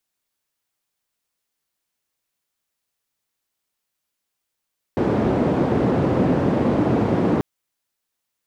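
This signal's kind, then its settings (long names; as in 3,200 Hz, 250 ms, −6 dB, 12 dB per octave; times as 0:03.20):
band-limited noise 120–360 Hz, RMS −19 dBFS 2.44 s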